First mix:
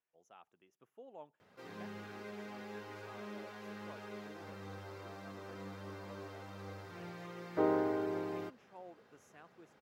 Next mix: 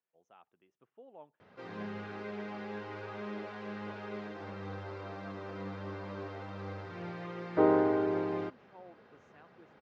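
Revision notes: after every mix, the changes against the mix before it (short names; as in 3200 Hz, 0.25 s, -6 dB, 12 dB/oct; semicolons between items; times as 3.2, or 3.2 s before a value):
background +6.5 dB; master: add air absorption 180 m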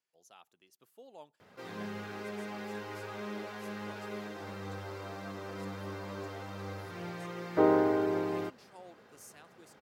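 speech: remove running mean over 10 samples; master: remove air absorption 180 m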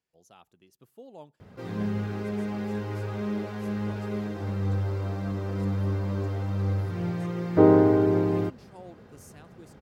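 master: remove HPF 860 Hz 6 dB/oct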